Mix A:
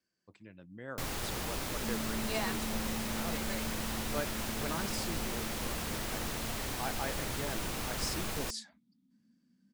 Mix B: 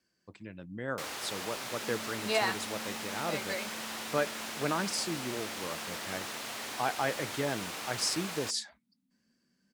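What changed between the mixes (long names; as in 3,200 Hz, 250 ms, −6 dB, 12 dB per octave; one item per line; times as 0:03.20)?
speech +7.5 dB
first sound: add meter weighting curve A
second sound −7.0 dB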